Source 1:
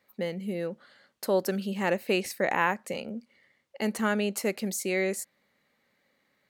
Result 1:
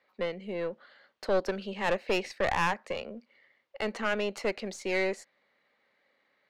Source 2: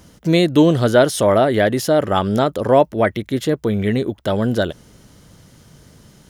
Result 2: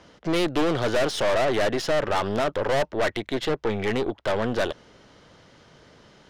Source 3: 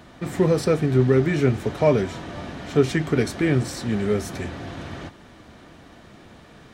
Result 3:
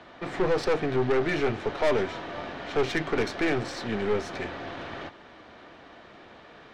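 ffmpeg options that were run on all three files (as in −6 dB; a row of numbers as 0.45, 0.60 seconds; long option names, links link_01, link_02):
-filter_complex "[0:a]acrossover=split=340 5600:gain=0.224 1 0.2[link_01][link_02][link_03];[link_01][link_02][link_03]amix=inputs=3:normalize=0,aeval=exprs='(tanh(15.8*val(0)+0.55)-tanh(0.55))/15.8':channel_layout=same,adynamicsmooth=sensitivity=5:basefreq=6600,volume=4dB"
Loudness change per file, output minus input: −2.0, −8.0, −6.5 LU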